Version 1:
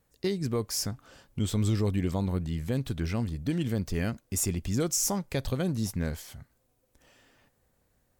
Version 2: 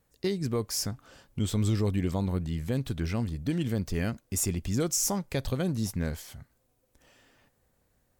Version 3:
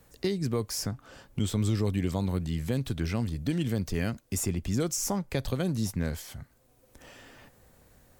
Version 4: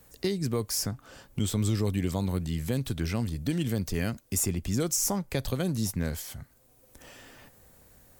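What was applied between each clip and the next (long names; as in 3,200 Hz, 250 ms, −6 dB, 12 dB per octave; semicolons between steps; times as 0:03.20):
no processing that can be heard
multiband upward and downward compressor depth 40%
high-shelf EQ 7,100 Hz +7.5 dB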